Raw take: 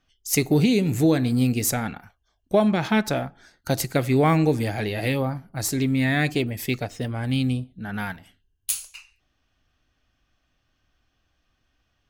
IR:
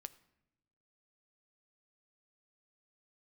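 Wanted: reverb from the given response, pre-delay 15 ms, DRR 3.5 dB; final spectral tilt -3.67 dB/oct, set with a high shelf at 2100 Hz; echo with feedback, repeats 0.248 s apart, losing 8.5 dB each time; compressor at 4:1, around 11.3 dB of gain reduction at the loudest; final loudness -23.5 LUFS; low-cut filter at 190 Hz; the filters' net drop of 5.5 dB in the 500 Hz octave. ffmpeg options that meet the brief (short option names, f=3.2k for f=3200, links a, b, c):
-filter_complex "[0:a]highpass=190,equalizer=f=500:t=o:g=-7.5,highshelf=f=2.1k:g=6.5,acompressor=threshold=-27dB:ratio=4,aecho=1:1:248|496|744|992:0.376|0.143|0.0543|0.0206,asplit=2[a][b];[1:a]atrim=start_sample=2205,adelay=15[c];[b][c]afir=irnorm=-1:irlink=0,volume=2dB[d];[a][d]amix=inputs=2:normalize=0,volume=5dB"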